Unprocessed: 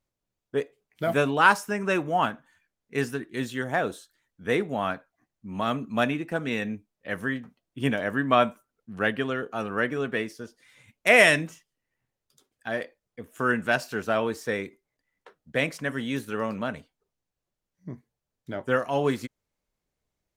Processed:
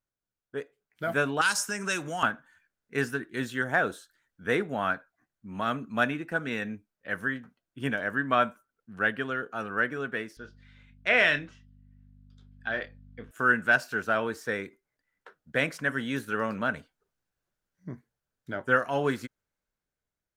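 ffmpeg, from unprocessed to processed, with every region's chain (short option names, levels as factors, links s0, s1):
-filter_complex "[0:a]asettb=1/sr,asplit=3[s0][s1][s2];[s0]atrim=end=1.414[s3];[s1]atrim=start=1.41:end=2.23,asetpts=PTS-STARTPTS,afade=t=in:d=0.004:c=qsin,afade=t=out:st=0.816:d=0.004:c=qsin,equalizer=f=6900:w=0.57:g=14,acrossover=split=140|3000[s4][s5][s6];[s5]acompressor=threshold=0.0282:ratio=3:attack=3.2:release=140:knee=2.83:detection=peak[s7];[s4][s7][s6]amix=inputs=3:normalize=0[s8];[s2]atrim=start=2.226[s9];[s3][s8]acrossfade=d=0.004:c1=hsin:c2=qsin[s10];[s10][s9]acrossfade=d=0.004:c1=qsin:c2=hsin,asettb=1/sr,asplit=3[s11][s12][s13];[s11]atrim=end=10.374[s14];[s12]atrim=start=10.37:end=13.31,asetpts=PTS-STARTPTS,afade=t=in:d=0.004:c=qsin,afade=t=out:st=2.936:d=0.004:c=qsin,lowpass=f=3800:t=q:w=1.7,aeval=exprs='val(0)+0.00562*(sin(2*PI*50*n/s)+sin(2*PI*2*50*n/s)/2+sin(2*PI*3*50*n/s)/3+sin(2*PI*4*50*n/s)/4+sin(2*PI*5*50*n/s)/5)':c=same,asplit=2[s15][s16];[s16]adelay=28,volume=0.299[s17];[s15][s17]amix=inputs=2:normalize=0,atrim=end_sample=129654[s18];[s13]atrim=start=13.306[s19];[s14][s18]acrossfade=d=0.004:c1=hsin:c2=qsin[s20];[s20][s19]acrossfade=d=0.004:c1=qsin:c2=hsin,equalizer=f=1500:w=3.2:g=9.5,dynaudnorm=f=270:g=9:m=3.76,volume=0.355"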